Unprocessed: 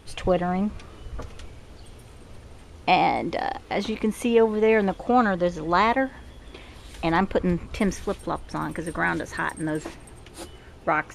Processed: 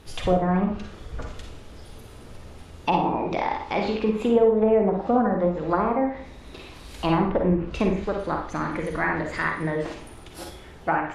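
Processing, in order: formant shift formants +2 st; low-pass that closes with the level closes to 690 Hz, closed at -17 dBFS; Schroeder reverb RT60 0.47 s, DRR 2 dB

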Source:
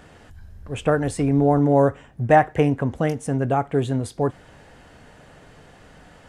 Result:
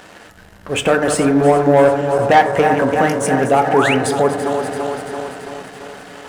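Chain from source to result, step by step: backward echo that repeats 168 ms, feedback 80%, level -11.5 dB; bass shelf 280 Hz -10.5 dB; in parallel at +3 dB: compression, threshold -30 dBFS, peak gain reduction 17.5 dB; on the sum: waveshaping leveller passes 2; painted sound rise, 3.71–3.95 s, 660–3100 Hz -19 dBFS; bass shelf 90 Hz -10.5 dB; on a send at -6.5 dB: reverberation RT60 1.1 s, pre-delay 5 ms

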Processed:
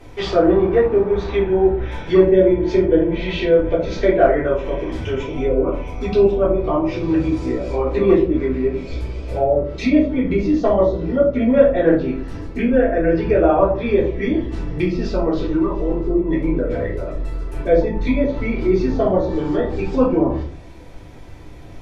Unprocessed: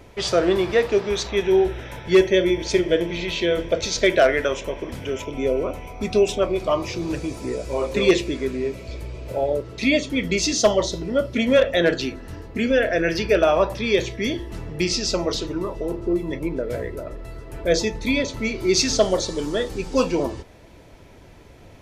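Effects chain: low-pass that closes with the level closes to 1.1 kHz, closed at -18.5 dBFS; simulated room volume 230 m³, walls furnished, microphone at 3.6 m; trim -3 dB

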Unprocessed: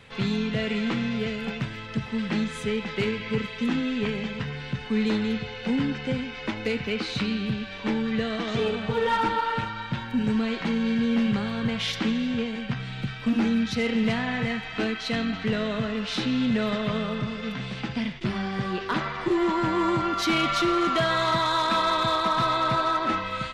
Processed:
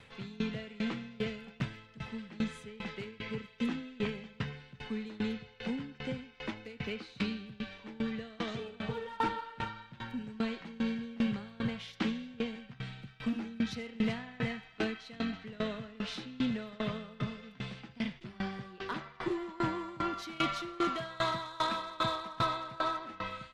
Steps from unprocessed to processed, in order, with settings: sawtooth tremolo in dB decaying 2.5 Hz, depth 23 dB; trim -3.5 dB

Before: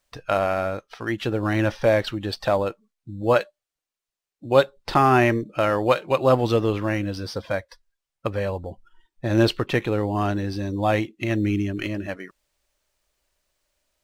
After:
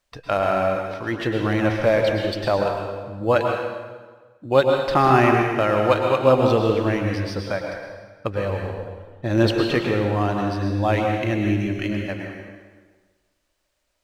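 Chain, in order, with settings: treble shelf 7.7 kHz -6 dB; plate-style reverb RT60 1.4 s, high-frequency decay 0.85×, pre-delay 95 ms, DRR 1.5 dB

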